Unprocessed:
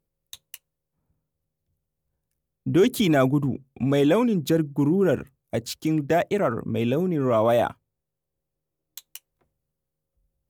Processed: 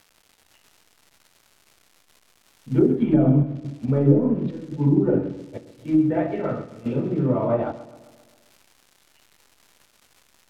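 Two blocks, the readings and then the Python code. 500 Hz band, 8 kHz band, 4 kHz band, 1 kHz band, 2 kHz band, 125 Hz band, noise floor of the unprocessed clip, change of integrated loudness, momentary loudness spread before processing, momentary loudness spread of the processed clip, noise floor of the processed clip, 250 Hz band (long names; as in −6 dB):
−2.0 dB, below −15 dB, below −15 dB, −5.5 dB, −10.5 dB, +4.5 dB, −83 dBFS, +1.0 dB, 12 LU, 13 LU, −62 dBFS, +2.0 dB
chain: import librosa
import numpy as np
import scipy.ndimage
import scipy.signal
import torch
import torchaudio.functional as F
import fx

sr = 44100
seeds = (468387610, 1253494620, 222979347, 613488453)

y = fx.air_absorb(x, sr, metres=340.0)
y = fx.comb_fb(y, sr, f0_hz=140.0, decay_s=0.61, harmonics='all', damping=0.0, mix_pct=60)
y = fx.room_shoebox(y, sr, seeds[0], volume_m3=310.0, walls='furnished', distance_m=4.5)
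y = fx.step_gate(y, sr, bpm=140, pattern='xx..xxxxxx', floor_db=-12.0, edge_ms=4.5)
y = fx.low_shelf(y, sr, hz=460.0, db=2.0)
y = fx.notch(y, sr, hz=1100.0, q=16.0)
y = fx.dmg_crackle(y, sr, seeds[1], per_s=360.0, level_db=-31.0)
y = fx.env_lowpass_down(y, sr, base_hz=400.0, full_db=-9.5)
y = fx.echo_feedback(y, sr, ms=132, feedback_pct=60, wet_db=-11.5)
y = fx.upward_expand(y, sr, threshold_db=-33.0, expansion=1.5)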